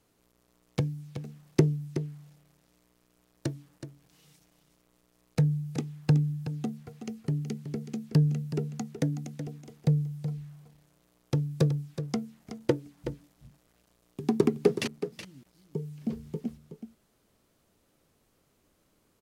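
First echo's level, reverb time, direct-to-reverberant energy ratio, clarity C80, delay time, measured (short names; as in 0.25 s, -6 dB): -10.5 dB, none, none, none, 0.373 s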